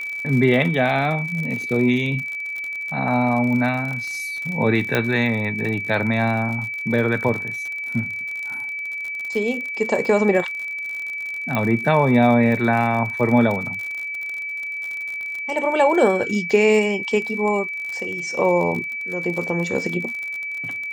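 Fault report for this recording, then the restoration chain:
crackle 53 per s -27 dBFS
whine 2.3 kHz -26 dBFS
4.95 s: pop -6 dBFS
11.55 s: pop -10 dBFS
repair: de-click; band-stop 2.3 kHz, Q 30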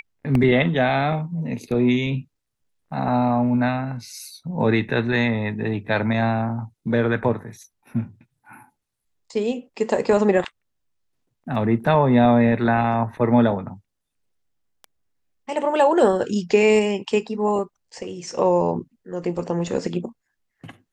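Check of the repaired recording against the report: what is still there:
11.55 s: pop

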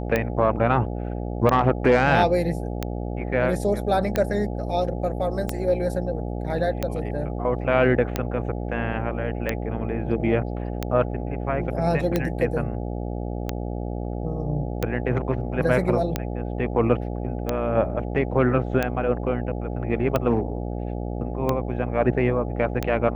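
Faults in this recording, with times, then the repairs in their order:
buzz 60 Hz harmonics 14 -29 dBFS
tick 45 rpm -9 dBFS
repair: de-click; de-hum 60 Hz, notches 14

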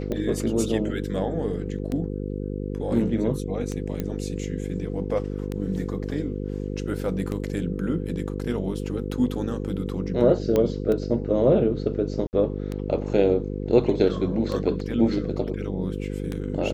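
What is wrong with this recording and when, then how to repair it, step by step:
buzz 50 Hz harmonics 10 -30 dBFS
tick 33 1/3 rpm -17 dBFS
4.00 s: pop -15 dBFS
10.56 s: pop -11 dBFS
12.27–12.33 s: dropout 59 ms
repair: de-click; de-hum 50 Hz, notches 10; interpolate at 12.27 s, 59 ms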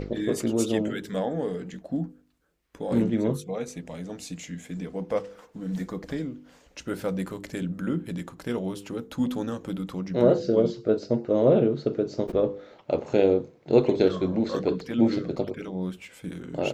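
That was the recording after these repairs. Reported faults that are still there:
nothing left

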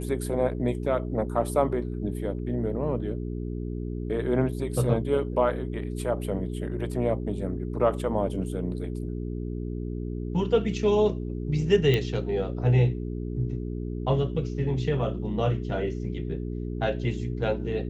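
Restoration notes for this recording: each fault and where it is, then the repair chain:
hum 60 Hz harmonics 7 -32 dBFS
11.94 s: pop -13 dBFS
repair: de-click; de-hum 60 Hz, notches 7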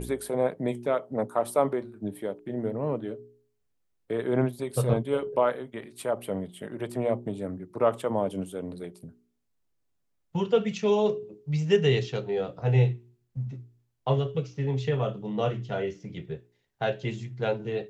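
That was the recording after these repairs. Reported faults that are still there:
nothing left

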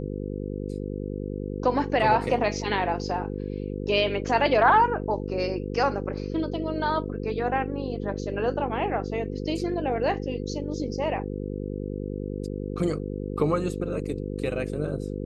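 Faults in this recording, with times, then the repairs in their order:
buzz 50 Hz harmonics 10 -32 dBFS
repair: de-hum 50 Hz, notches 10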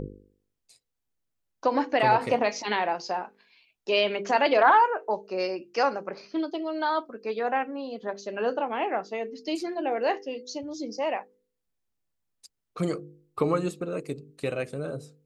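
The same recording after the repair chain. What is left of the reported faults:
nothing left

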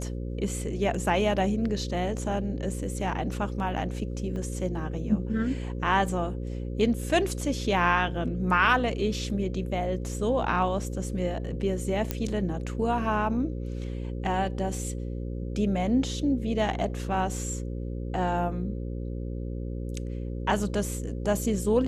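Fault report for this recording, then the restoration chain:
buzz 60 Hz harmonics 9 -33 dBFS
4.36 s: dropout 2.6 ms
12.11 s: pop -12 dBFS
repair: de-click; de-hum 60 Hz, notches 9; interpolate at 4.36 s, 2.6 ms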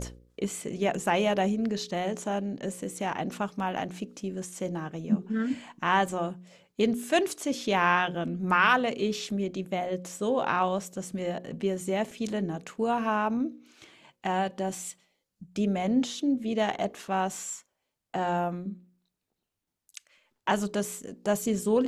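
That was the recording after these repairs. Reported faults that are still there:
nothing left

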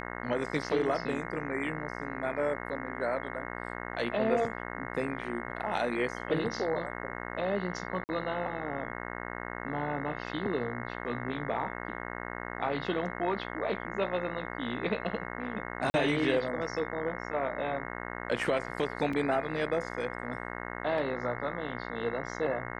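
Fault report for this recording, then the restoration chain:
buzz 60 Hz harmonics 36 -39 dBFS
8.04–8.09 s: dropout 49 ms
15.90–15.94 s: dropout 40 ms
19.13 s: dropout 3.5 ms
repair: de-hum 60 Hz, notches 36; interpolate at 8.04 s, 49 ms; interpolate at 15.90 s, 40 ms; interpolate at 19.13 s, 3.5 ms

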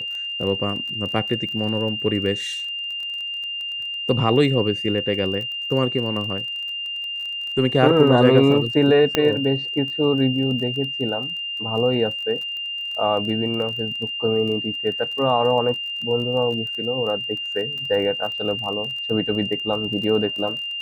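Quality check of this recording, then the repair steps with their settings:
crackle 24 per s -30 dBFS
whine 2.8 kHz -26 dBFS
9.15 s: pop -4 dBFS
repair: de-click; band-stop 2.8 kHz, Q 30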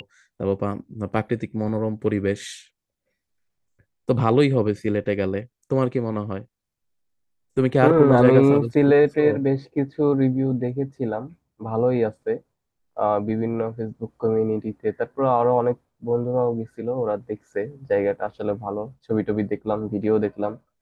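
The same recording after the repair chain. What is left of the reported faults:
nothing left

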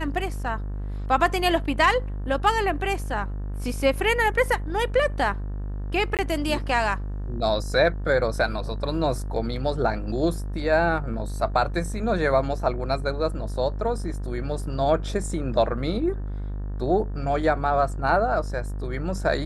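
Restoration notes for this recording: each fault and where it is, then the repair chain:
buzz 50 Hz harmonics 37 -30 dBFS
6.17–6.19 s: dropout 18 ms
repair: de-hum 50 Hz, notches 37; interpolate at 6.17 s, 18 ms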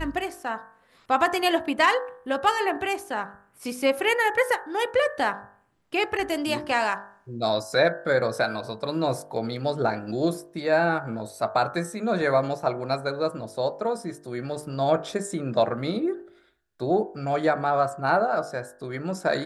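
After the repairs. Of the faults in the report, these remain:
nothing left

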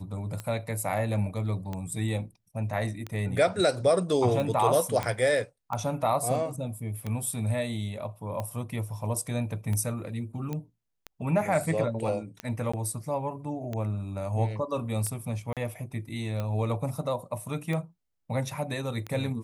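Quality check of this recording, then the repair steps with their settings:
tick 45 rpm -20 dBFS
5.03 s: pop -15 dBFS
10.53 s: pop -20 dBFS
12.72–12.73 s: dropout 15 ms
15.53–15.57 s: dropout 37 ms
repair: de-click; interpolate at 12.72 s, 15 ms; interpolate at 15.53 s, 37 ms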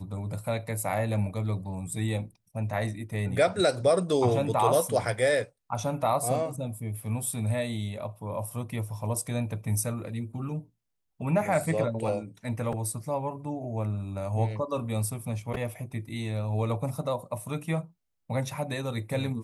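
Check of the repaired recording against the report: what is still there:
nothing left

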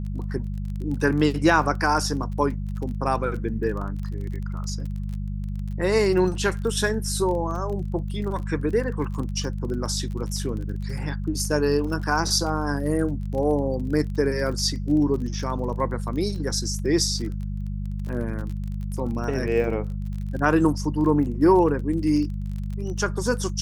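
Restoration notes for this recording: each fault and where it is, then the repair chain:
crackle 29 per s -32 dBFS
hum 50 Hz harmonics 4 -29 dBFS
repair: de-click; de-hum 50 Hz, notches 4

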